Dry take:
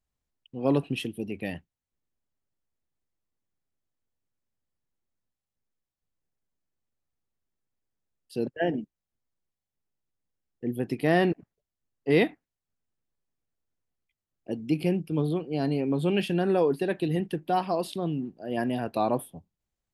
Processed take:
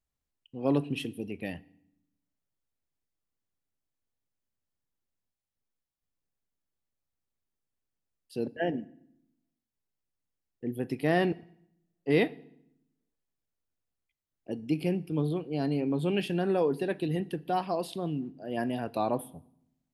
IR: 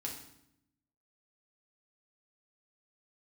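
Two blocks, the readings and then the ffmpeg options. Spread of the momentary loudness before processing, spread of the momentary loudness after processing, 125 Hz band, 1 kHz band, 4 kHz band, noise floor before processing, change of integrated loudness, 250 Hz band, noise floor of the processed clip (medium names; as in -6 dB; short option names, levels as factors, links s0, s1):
13 LU, 13 LU, -3.0 dB, -3.5 dB, -3.0 dB, under -85 dBFS, -3.0 dB, -3.0 dB, under -85 dBFS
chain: -filter_complex "[0:a]asplit=2[s0][s1];[1:a]atrim=start_sample=2205[s2];[s1][s2]afir=irnorm=-1:irlink=0,volume=0.188[s3];[s0][s3]amix=inputs=2:normalize=0,volume=0.631"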